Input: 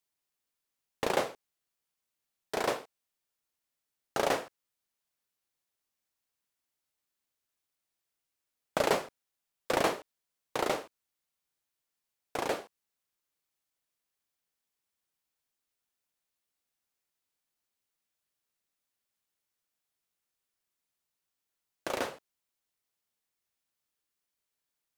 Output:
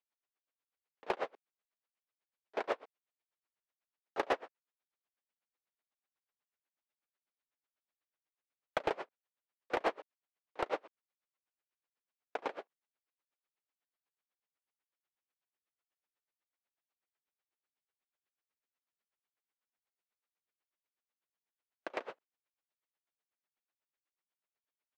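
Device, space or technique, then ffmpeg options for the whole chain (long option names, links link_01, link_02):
helicopter radio: -af "highpass=330,lowpass=2600,aeval=exprs='val(0)*pow(10,-31*(0.5-0.5*cos(2*PI*8.1*n/s))/20)':channel_layout=same,asoftclip=type=hard:threshold=-25dB,volume=2dB"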